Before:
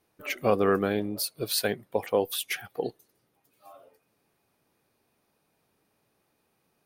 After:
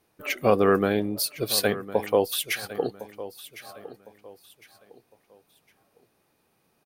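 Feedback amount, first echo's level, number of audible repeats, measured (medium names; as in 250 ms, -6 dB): 32%, -15.5 dB, 2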